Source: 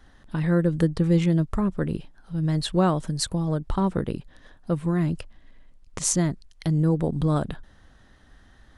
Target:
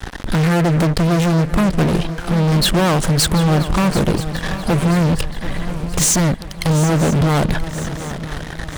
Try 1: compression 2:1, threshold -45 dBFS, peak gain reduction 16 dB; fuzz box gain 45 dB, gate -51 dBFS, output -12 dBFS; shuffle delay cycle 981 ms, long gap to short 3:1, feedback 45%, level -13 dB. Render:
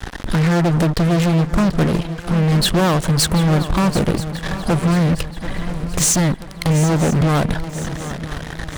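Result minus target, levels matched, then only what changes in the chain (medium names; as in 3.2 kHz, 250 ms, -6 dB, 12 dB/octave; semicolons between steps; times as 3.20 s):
compression: peak gain reduction +4 dB
change: compression 2:1, threshold -37 dBFS, peak gain reduction 12 dB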